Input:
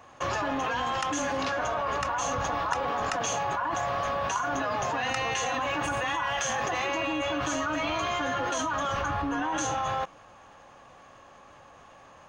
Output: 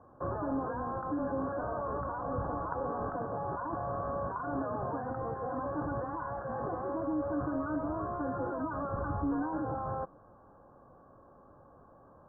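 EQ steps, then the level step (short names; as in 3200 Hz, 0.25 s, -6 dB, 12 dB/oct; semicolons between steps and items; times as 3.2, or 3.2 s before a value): rippled Chebyshev low-pass 1600 Hz, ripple 3 dB; tilt shelf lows +8.5 dB, about 910 Hz; -6.0 dB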